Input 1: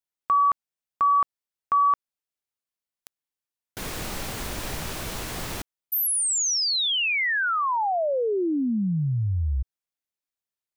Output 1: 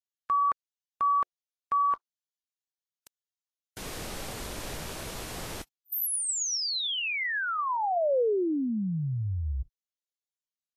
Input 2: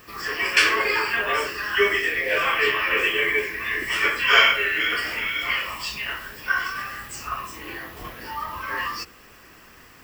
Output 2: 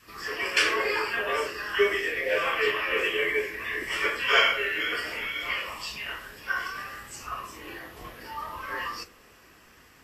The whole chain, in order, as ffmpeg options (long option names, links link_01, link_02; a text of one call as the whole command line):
ffmpeg -i in.wav -af "adynamicequalizer=threshold=0.00891:dfrequency=510:dqfactor=1.2:tfrequency=510:tqfactor=1.2:attack=5:release=100:ratio=0.375:range=3:mode=boostabove:tftype=bell,volume=-6dB" -ar 44100 -c:a libvorbis -b:a 32k out.ogg